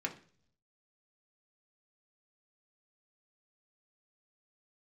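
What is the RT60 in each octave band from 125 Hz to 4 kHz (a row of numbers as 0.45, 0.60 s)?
1.0, 0.70, 0.55, 0.40, 0.45, 0.55 s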